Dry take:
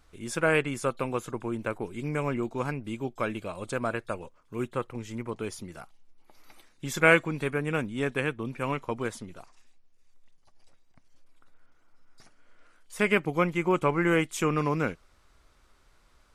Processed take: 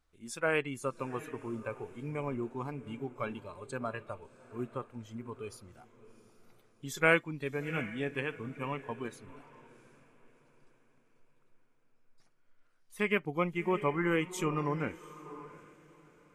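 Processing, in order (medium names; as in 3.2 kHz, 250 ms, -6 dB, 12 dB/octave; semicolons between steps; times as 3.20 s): echo that smears into a reverb 714 ms, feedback 42%, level -11 dB; spectral noise reduction 10 dB; trim -5.5 dB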